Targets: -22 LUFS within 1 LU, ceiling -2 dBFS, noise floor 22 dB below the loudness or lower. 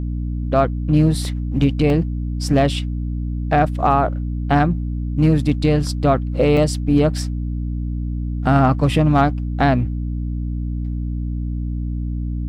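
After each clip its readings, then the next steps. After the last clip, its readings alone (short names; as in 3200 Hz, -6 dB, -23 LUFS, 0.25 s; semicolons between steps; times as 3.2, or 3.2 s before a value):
dropouts 3; longest dropout 1.3 ms; hum 60 Hz; harmonics up to 300 Hz; hum level -21 dBFS; loudness -19.5 LUFS; peak -4.5 dBFS; loudness target -22.0 LUFS
-> interpolate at 1.25/1.9/6.57, 1.3 ms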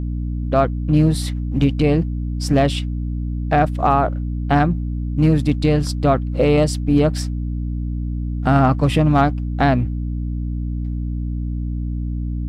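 dropouts 0; hum 60 Hz; harmonics up to 300 Hz; hum level -21 dBFS
-> notches 60/120/180/240/300 Hz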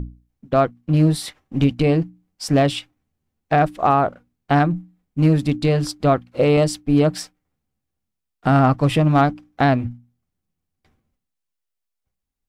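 hum none; loudness -19.0 LUFS; peak -6.0 dBFS; loudness target -22.0 LUFS
-> gain -3 dB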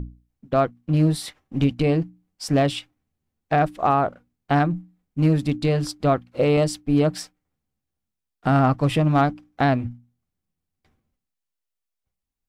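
loudness -22.0 LUFS; peak -9.0 dBFS; noise floor -83 dBFS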